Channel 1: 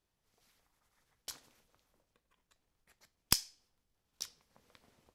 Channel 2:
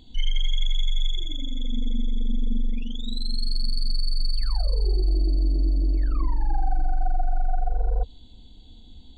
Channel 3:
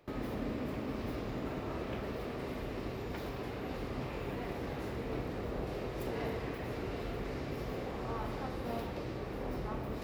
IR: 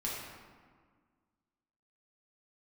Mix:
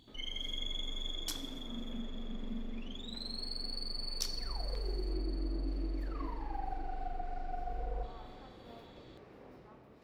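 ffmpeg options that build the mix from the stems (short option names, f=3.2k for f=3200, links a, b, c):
-filter_complex "[0:a]volume=2.5dB,asplit=3[a][b][c];[a]atrim=end=2.06,asetpts=PTS-STARTPTS,afade=t=out:st=2.056:d=0.004:c=hsin[d];[b]atrim=start=2.06:end=4.15,asetpts=PTS-STARTPTS,volume=0[e];[c]atrim=start=4.15,asetpts=PTS-STARTPTS,afade=t=in:d=0.004:c=hsin[f];[d][e][f]concat=n=3:v=0:a=1,asplit=2[g][h];[h]volume=-9.5dB[i];[1:a]volume=-10dB,asplit=2[j][k];[k]volume=-7dB[l];[2:a]highshelf=f=10k:g=-10.5,dynaudnorm=f=100:g=11:m=4dB,volume=-17.5dB[m];[3:a]atrim=start_sample=2205[n];[i][l]amix=inputs=2:normalize=0[o];[o][n]afir=irnorm=-1:irlink=0[p];[g][j][m][p]amix=inputs=4:normalize=0,highpass=f=130:p=1"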